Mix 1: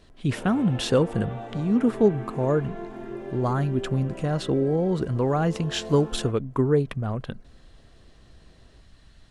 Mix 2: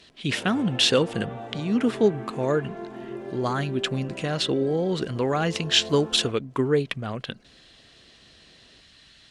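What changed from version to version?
speech: add meter weighting curve D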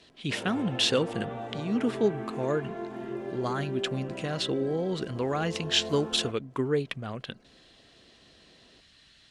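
speech −5.0 dB

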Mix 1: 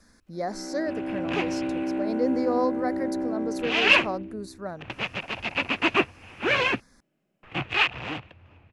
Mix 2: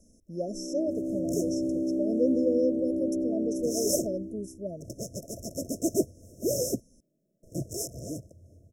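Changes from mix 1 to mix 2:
second sound: remove low-pass with resonance 2,600 Hz, resonance Q 6.3
master: add linear-phase brick-wall band-stop 690–5,200 Hz

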